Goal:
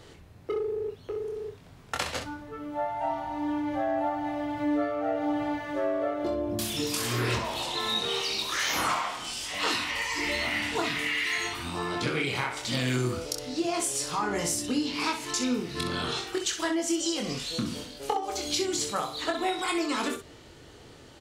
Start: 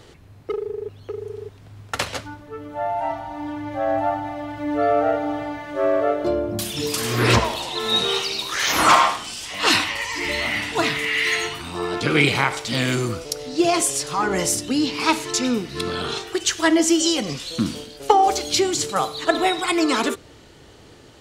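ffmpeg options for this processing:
-filter_complex "[0:a]acompressor=threshold=-22dB:ratio=10,asplit=2[a][b];[b]aecho=0:1:24|64:0.596|0.398[c];[a][c]amix=inputs=2:normalize=0,volume=-4.5dB"

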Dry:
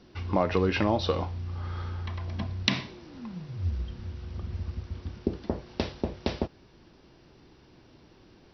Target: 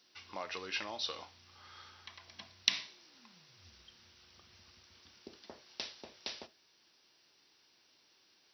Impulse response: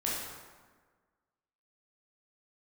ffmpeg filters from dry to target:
-filter_complex "[0:a]aderivative,asplit=2[a][b];[1:a]atrim=start_sample=2205,atrim=end_sample=3528[c];[b][c]afir=irnorm=-1:irlink=0,volume=-19dB[d];[a][d]amix=inputs=2:normalize=0,volume=2.5dB"

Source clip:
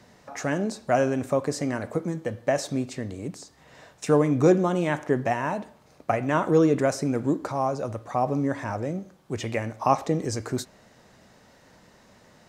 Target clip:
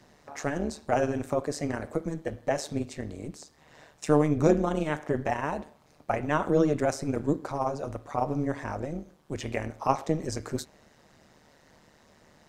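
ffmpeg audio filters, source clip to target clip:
-af "tremolo=f=150:d=0.824"

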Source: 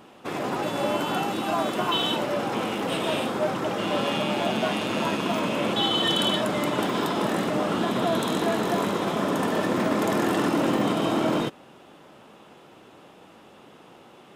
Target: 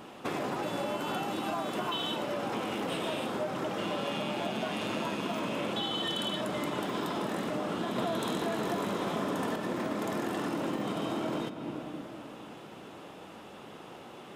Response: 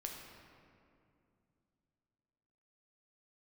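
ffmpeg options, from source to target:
-filter_complex "[0:a]asettb=1/sr,asplit=3[a][b][c];[a]atrim=end=7.984[d];[b]atrim=start=7.98:end=9.56,asetpts=PTS-STARTPTS,afade=t=in:d=0.004:c=qsin,afade=t=out:st=1.576:d=0.004:c=qsin,acontrast=90[e];[c]atrim=start=9.556[f];[d][e]acrossfade=d=0.004:c1=hsin:c2=qsin[g];[g][f]acrossfade=d=0.004:c1=qsin:c2=hsin,asplit=2[h][i];[1:a]atrim=start_sample=2205[j];[i][j]afir=irnorm=-1:irlink=0,volume=-6dB[k];[h][k]amix=inputs=2:normalize=0,acompressor=threshold=-31dB:ratio=6"

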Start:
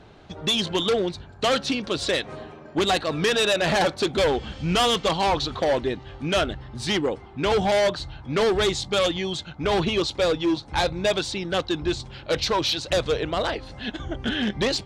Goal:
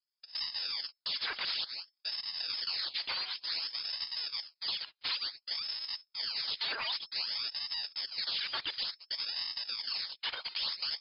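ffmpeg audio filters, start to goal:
-filter_complex "[0:a]highpass=340,agate=range=-41dB:threshold=-39dB:ratio=16:detection=peak,tiltshelf=f=970:g=-8,acompressor=threshold=-24dB:ratio=6,acrusher=samples=35:mix=1:aa=0.000001:lfo=1:lforange=56:lforate=0.41,asoftclip=type=tanh:threshold=-29.5dB,acrossover=split=500|3000[a][b][c];[a]acompressor=threshold=-38dB:ratio=3[d];[d][b][c]amix=inputs=3:normalize=0,lowpass=f=3.3k:t=q:w=0.5098,lowpass=f=3.3k:t=q:w=0.6013,lowpass=f=3.3k:t=q:w=0.9,lowpass=f=3.3k:t=q:w=2.563,afreqshift=-3900,asetrate=59535,aresample=44100"

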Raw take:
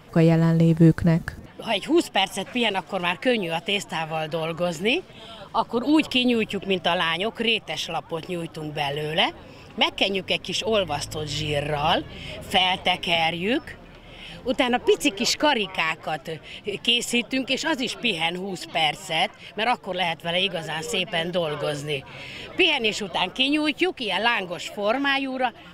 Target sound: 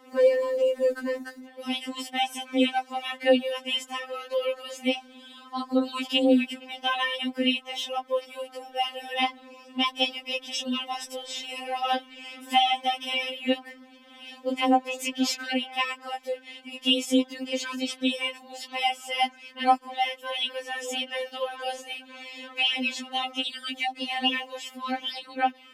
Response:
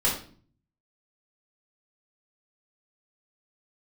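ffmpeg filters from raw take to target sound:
-af "afreqshift=26,afftfilt=real='re*3.46*eq(mod(b,12),0)':imag='im*3.46*eq(mod(b,12),0)':win_size=2048:overlap=0.75,volume=-2dB"

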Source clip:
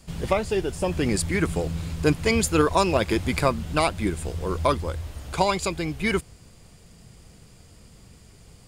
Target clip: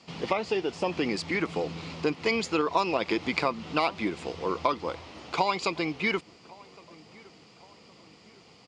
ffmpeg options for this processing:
-filter_complex "[0:a]acompressor=threshold=-23dB:ratio=6,highpass=320,equalizer=f=390:t=q:w=4:g=-4,equalizer=f=590:t=q:w=4:g=-6,equalizer=f=1.6k:t=q:w=4:g=-9,equalizer=f=3.6k:t=q:w=4:g=-4,lowpass=f=5k:w=0.5412,lowpass=f=5k:w=1.3066,asplit=2[a][b];[b]adelay=1113,lowpass=f=1.9k:p=1,volume=-23dB,asplit=2[c][d];[d]adelay=1113,lowpass=f=1.9k:p=1,volume=0.49,asplit=2[e][f];[f]adelay=1113,lowpass=f=1.9k:p=1,volume=0.49[g];[a][c][e][g]amix=inputs=4:normalize=0,volume=5dB"

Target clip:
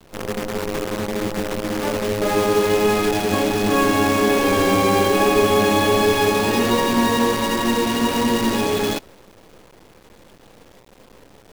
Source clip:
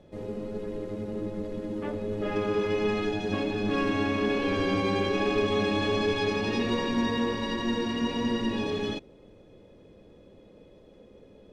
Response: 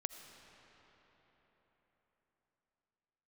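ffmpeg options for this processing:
-af "adynamicequalizer=threshold=0.00708:dfrequency=840:dqfactor=0.93:tfrequency=840:tqfactor=0.93:attack=5:release=100:ratio=0.375:range=3.5:mode=boostabove:tftype=bell,acrusher=bits=6:dc=4:mix=0:aa=0.000001,volume=7dB"

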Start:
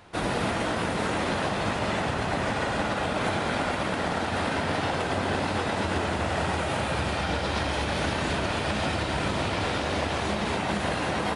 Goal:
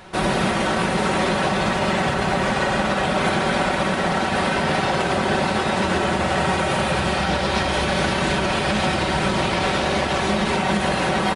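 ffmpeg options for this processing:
-filter_complex "[0:a]aecho=1:1:5.3:0.54,asplit=2[a][b];[b]alimiter=limit=-22.5dB:level=0:latency=1:release=198,volume=2dB[c];[a][c]amix=inputs=2:normalize=0,asettb=1/sr,asplit=3[d][e][f];[d]atrim=end=1.634[g];[e]atrim=start=1.63:end=2.49,asetpts=PTS-STARTPTS,afade=t=in:d=0.004:c=qsin,afade=t=out:st=0.856:d=0.004:c=qsin,aeval=exprs='sgn(val(0))*max(abs(val(0))-0.00178,0)':c=same[h];[f]atrim=start=2.486[i];[g][h]acrossfade=d=0.004:c1=hsin:c2=qsin[j];[j][i]acrossfade=d=0.004:c1=qsin:c2=hsin,volume=1.5dB"

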